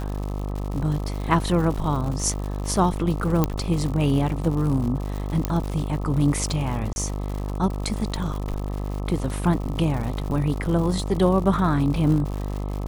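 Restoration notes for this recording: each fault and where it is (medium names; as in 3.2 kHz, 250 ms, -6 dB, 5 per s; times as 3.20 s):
buzz 50 Hz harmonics 26 -28 dBFS
crackle 150 per s -30 dBFS
3.44 s: pop -7 dBFS
5.45 s: pop -9 dBFS
6.93–6.96 s: dropout 31 ms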